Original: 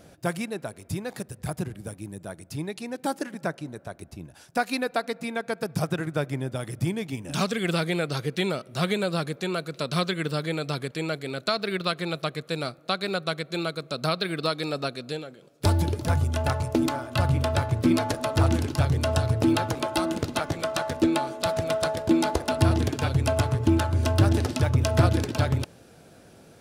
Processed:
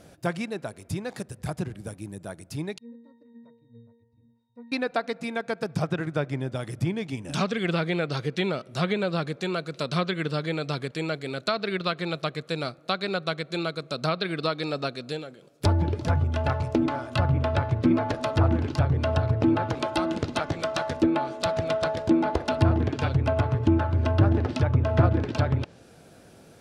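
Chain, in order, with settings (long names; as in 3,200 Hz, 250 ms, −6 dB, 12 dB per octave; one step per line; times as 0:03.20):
treble cut that deepens with the level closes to 1,700 Hz, closed at −18 dBFS
0:02.78–0:04.72: resonances in every octave A#, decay 0.74 s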